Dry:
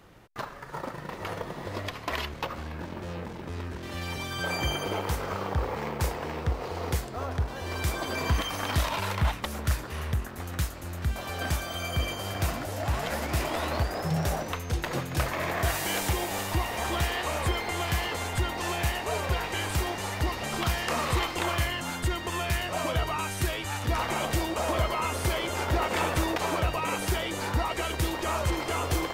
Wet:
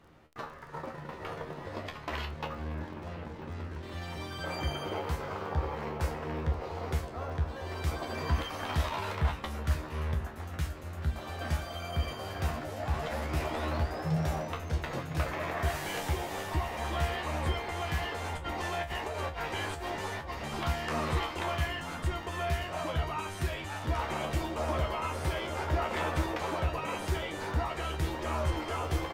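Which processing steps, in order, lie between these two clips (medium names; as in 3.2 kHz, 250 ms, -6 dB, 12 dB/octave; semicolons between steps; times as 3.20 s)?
treble shelf 5.1 kHz -9.5 dB; 18.24–20.30 s: compressor with a negative ratio -31 dBFS, ratio -0.5; feedback comb 77 Hz, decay 0.2 s, harmonics all, mix 90%; crackle 12 per s -47 dBFS; echo from a far wall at 170 m, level -12 dB; trim +2 dB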